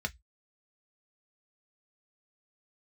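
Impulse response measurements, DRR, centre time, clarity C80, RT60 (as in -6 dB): 5.0 dB, 3 ms, 41.0 dB, 0.10 s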